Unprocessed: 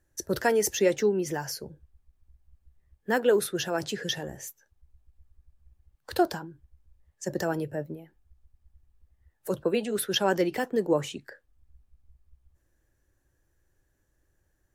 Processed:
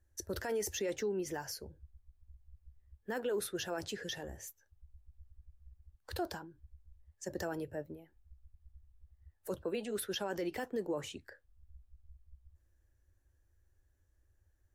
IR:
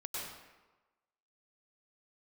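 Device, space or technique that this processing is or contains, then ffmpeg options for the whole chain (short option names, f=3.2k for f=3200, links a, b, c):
car stereo with a boomy subwoofer: -af "lowshelf=f=110:t=q:w=3:g=6.5,alimiter=limit=-20.5dB:level=0:latency=1:release=25,volume=-7.5dB"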